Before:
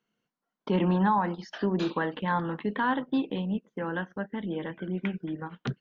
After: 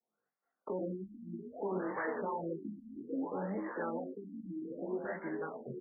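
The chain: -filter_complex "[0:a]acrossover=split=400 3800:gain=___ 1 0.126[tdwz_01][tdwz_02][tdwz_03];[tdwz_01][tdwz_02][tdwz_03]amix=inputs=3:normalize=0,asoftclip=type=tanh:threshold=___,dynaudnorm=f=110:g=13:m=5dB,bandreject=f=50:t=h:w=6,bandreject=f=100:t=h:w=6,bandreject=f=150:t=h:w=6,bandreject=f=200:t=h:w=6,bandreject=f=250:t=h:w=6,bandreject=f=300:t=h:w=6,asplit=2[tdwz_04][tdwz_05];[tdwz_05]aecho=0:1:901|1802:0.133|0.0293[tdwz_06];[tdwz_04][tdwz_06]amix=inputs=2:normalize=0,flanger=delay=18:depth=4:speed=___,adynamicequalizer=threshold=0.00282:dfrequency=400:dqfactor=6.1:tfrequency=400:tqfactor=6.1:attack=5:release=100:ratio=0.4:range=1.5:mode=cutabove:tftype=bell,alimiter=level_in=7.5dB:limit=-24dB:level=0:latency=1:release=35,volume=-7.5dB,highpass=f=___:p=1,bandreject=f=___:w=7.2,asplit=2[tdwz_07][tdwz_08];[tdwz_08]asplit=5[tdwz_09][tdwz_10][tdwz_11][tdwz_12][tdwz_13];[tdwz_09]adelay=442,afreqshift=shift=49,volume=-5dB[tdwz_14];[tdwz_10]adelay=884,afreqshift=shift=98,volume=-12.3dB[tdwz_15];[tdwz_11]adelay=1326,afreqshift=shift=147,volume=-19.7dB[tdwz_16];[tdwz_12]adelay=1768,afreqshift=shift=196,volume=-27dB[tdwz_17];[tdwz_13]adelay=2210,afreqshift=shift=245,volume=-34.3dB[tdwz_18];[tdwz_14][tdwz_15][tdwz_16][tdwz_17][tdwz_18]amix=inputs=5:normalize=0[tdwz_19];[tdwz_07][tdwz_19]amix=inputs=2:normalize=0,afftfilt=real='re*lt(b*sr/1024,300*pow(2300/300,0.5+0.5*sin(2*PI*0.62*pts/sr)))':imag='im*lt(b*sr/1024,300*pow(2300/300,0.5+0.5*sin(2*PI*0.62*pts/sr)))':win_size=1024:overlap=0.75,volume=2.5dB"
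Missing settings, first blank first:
0.178, -25.5dB, 0.77, 92, 990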